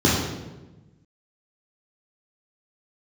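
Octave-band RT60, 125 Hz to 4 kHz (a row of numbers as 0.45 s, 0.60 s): 1.7 s, 1.5 s, 1.2 s, 1.0 s, 0.90 s, 0.80 s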